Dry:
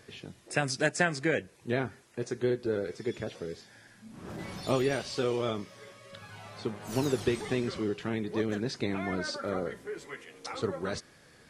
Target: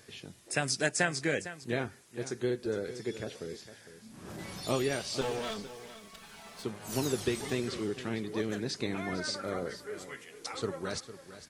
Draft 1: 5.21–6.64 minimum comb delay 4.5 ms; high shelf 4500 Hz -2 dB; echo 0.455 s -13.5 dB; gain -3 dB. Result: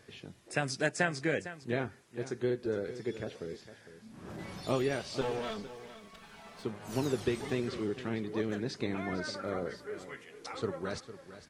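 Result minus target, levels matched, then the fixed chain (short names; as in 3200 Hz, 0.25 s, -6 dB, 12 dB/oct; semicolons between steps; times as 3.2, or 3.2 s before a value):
8000 Hz band -7.0 dB
5.21–6.64 minimum comb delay 4.5 ms; high shelf 4500 Hz +9.5 dB; echo 0.455 s -13.5 dB; gain -3 dB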